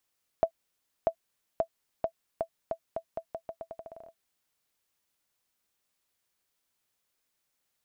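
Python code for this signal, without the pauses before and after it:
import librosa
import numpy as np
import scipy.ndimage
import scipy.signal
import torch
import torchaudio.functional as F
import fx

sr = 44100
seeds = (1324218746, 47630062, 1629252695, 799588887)

y = fx.bouncing_ball(sr, first_gap_s=0.64, ratio=0.83, hz=660.0, decay_ms=80.0, level_db=-13.0)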